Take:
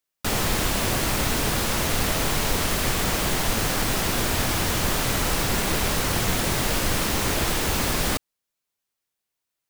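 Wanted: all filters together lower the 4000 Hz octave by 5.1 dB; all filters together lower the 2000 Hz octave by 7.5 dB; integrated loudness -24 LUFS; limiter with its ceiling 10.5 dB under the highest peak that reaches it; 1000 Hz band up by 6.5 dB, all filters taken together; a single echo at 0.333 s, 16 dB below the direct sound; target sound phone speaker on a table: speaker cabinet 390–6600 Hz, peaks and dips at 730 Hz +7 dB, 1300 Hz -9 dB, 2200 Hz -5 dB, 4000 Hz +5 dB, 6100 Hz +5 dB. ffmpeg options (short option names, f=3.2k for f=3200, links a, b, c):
-af "equalizer=f=1k:t=o:g=8.5,equalizer=f=2k:t=o:g=-6.5,equalizer=f=4k:t=o:g=-8,alimiter=limit=-20dB:level=0:latency=1,highpass=f=390:w=0.5412,highpass=f=390:w=1.3066,equalizer=f=730:t=q:w=4:g=7,equalizer=f=1.3k:t=q:w=4:g=-9,equalizer=f=2.2k:t=q:w=4:g=-5,equalizer=f=4k:t=q:w=4:g=5,equalizer=f=6.1k:t=q:w=4:g=5,lowpass=f=6.6k:w=0.5412,lowpass=f=6.6k:w=1.3066,aecho=1:1:333:0.158,volume=7dB"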